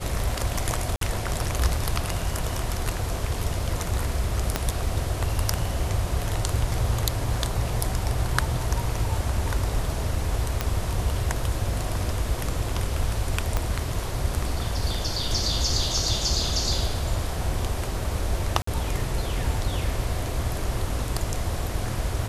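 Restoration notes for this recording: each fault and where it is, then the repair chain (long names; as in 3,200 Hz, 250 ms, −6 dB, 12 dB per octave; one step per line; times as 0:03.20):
0:00.96–0:01.01: drop-out 53 ms
0:04.56: click −7 dBFS
0:10.61: click −9 dBFS
0:13.57: click −10 dBFS
0:18.62–0:18.67: drop-out 54 ms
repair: click removal
repair the gap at 0:00.96, 53 ms
repair the gap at 0:18.62, 54 ms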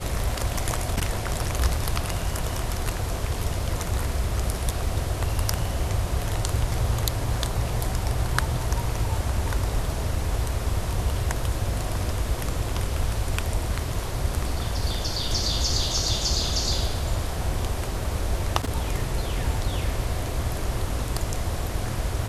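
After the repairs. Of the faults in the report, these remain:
0:04.56: click
0:13.57: click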